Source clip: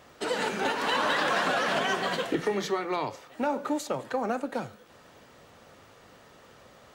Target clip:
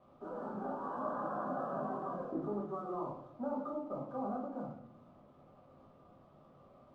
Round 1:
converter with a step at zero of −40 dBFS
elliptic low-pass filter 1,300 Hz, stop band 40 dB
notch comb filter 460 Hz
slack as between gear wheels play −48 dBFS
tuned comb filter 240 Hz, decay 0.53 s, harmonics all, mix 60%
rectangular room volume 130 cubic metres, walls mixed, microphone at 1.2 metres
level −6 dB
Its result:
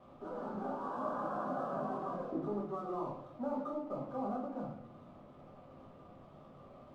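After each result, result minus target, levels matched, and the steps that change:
converter with a step at zero: distortion +10 dB; slack as between gear wheels: distortion +8 dB
change: converter with a step at zero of −51 dBFS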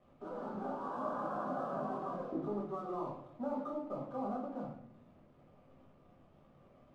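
slack as between gear wheels: distortion +8 dB
change: slack as between gear wheels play −57 dBFS

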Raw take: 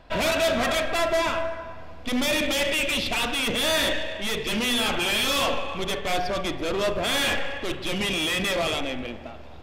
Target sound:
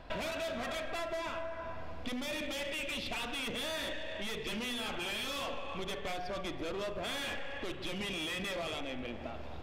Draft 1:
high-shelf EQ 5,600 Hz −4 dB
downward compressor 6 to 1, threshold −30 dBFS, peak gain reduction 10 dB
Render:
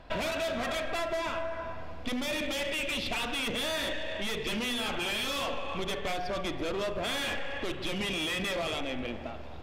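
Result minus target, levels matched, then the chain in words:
downward compressor: peak gain reduction −5.5 dB
high-shelf EQ 5,600 Hz −4 dB
downward compressor 6 to 1, threshold −36.5 dBFS, peak gain reduction 15.5 dB

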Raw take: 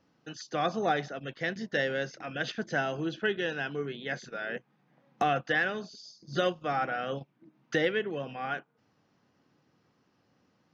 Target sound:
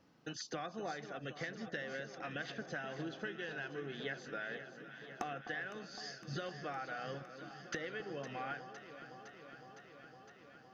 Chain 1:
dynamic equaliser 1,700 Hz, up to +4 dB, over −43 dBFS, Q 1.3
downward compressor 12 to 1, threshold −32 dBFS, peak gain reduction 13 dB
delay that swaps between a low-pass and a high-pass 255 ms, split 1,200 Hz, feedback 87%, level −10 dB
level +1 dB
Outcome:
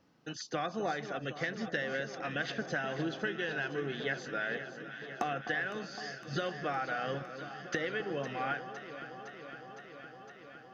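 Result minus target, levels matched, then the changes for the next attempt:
downward compressor: peak gain reduction −8 dB
change: downward compressor 12 to 1, threshold −40.5 dBFS, peak gain reduction 20.5 dB

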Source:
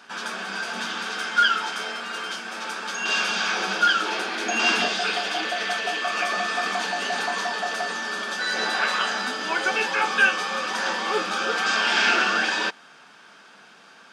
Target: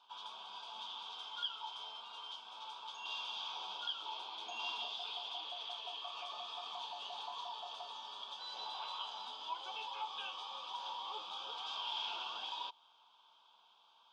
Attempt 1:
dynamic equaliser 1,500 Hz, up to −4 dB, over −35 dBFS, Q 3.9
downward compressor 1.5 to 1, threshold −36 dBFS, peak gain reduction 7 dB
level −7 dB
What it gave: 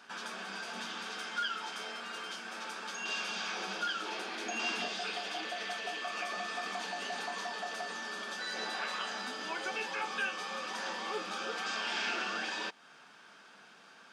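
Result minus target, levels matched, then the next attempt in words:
2,000 Hz band +10.0 dB
dynamic equaliser 1,500 Hz, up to −4 dB, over −35 dBFS, Q 3.9
pair of resonant band-passes 1,800 Hz, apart 1.8 octaves
downward compressor 1.5 to 1, threshold −36 dBFS, peak gain reduction 5 dB
level −7 dB

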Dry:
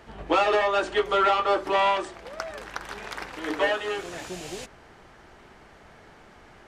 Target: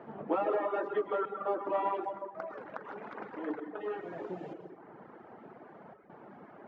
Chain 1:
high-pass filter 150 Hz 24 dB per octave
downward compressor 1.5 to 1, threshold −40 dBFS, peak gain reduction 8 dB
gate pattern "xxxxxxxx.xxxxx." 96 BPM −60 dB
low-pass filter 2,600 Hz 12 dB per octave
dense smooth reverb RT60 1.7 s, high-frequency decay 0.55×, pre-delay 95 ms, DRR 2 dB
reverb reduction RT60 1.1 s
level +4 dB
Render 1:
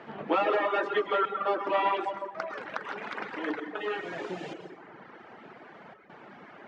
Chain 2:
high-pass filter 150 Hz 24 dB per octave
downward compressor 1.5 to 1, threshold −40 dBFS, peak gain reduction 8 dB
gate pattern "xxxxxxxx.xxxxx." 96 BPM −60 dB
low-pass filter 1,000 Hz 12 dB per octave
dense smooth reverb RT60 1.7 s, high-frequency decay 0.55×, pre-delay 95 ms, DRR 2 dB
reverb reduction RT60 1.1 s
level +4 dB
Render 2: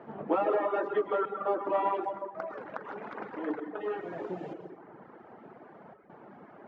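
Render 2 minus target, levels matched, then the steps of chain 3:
downward compressor: peak gain reduction −3 dB
high-pass filter 150 Hz 24 dB per octave
downward compressor 1.5 to 1, threshold −49 dBFS, peak gain reduction 11 dB
gate pattern "xxxxxxxx.xxxxx." 96 BPM −60 dB
low-pass filter 1,000 Hz 12 dB per octave
dense smooth reverb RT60 1.7 s, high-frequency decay 0.55×, pre-delay 95 ms, DRR 2 dB
reverb reduction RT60 1.1 s
level +4 dB

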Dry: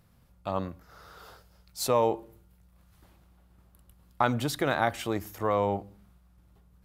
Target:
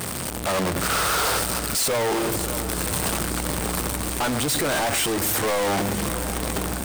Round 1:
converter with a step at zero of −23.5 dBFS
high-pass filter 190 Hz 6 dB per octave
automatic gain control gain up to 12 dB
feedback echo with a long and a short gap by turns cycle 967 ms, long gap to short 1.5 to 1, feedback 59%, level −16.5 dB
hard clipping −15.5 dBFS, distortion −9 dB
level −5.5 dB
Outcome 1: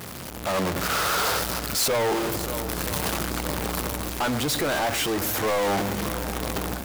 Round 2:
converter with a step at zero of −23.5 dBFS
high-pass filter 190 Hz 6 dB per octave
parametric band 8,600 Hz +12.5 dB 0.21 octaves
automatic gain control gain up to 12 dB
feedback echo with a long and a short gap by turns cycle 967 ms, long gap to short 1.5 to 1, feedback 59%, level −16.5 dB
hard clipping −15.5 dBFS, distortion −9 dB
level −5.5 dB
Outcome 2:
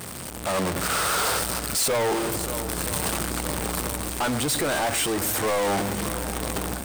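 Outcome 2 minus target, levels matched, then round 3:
converter with a step at zero: distortion −4 dB
converter with a step at zero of −16.5 dBFS
high-pass filter 190 Hz 6 dB per octave
parametric band 8,600 Hz +12.5 dB 0.21 octaves
automatic gain control gain up to 12 dB
feedback echo with a long and a short gap by turns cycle 967 ms, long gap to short 1.5 to 1, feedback 59%, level −16.5 dB
hard clipping −15.5 dBFS, distortion −8 dB
level −5.5 dB

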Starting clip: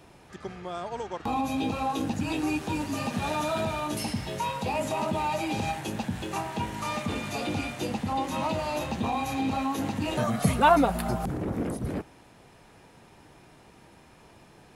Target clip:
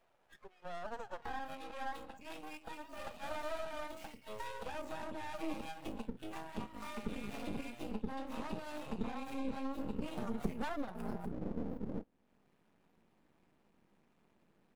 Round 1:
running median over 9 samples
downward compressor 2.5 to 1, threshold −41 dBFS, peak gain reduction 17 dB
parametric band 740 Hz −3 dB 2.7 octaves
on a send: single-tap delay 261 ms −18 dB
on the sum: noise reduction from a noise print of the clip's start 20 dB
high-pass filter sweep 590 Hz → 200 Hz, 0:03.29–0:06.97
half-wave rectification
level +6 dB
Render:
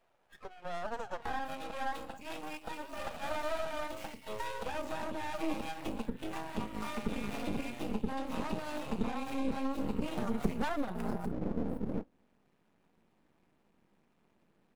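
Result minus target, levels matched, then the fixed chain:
downward compressor: peak gain reduction −5 dB
running median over 9 samples
downward compressor 2.5 to 1, threshold −49.5 dBFS, peak gain reduction 22 dB
parametric band 740 Hz −3 dB 2.7 octaves
on a send: single-tap delay 261 ms −18 dB
on the sum: noise reduction from a noise print of the clip's start 20 dB
high-pass filter sweep 590 Hz → 200 Hz, 0:03.29–0:06.97
half-wave rectification
level +6 dB

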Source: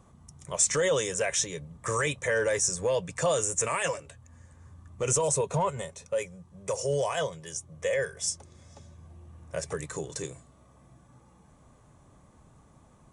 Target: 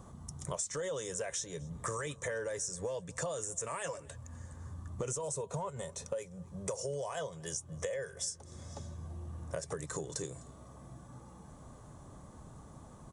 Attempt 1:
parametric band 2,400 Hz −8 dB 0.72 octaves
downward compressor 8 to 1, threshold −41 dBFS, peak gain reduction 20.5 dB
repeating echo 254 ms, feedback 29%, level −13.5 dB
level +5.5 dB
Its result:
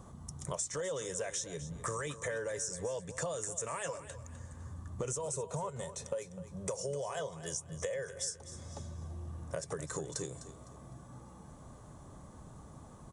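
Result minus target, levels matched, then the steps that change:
echo-to-direct +11.5 dB
change: repeating echo 254 ms, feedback 29%, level −25 dB

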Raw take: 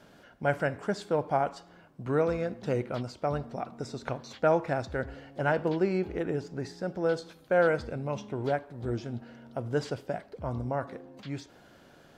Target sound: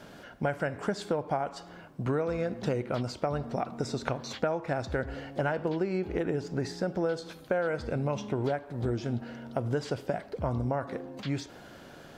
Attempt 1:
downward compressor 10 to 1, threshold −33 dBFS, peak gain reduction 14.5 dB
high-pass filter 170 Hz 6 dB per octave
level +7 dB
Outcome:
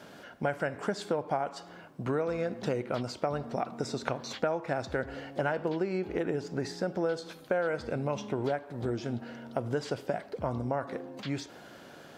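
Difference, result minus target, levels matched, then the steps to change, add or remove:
125 Hz band −3.0 dB
remove: high-pass filter 170 Hz 6 dB per octave

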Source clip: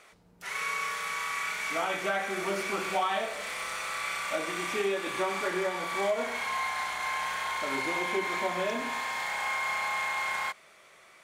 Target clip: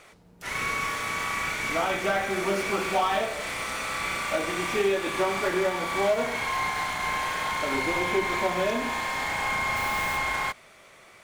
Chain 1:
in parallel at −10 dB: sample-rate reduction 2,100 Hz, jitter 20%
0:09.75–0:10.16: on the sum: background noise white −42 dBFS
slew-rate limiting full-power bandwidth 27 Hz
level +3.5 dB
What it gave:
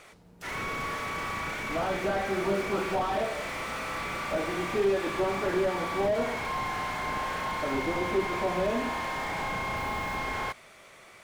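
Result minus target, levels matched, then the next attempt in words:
slew-rate limiting: distortion +19 dB
in parallel at −10 dB: sample-rate reduction 2,100 Hz, jitter 20%
0:09.75–0:10.16: on the sum: background noise white −42 dBFS
slew-rate limiting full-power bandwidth 93.5 Hz
level +3.5 dB

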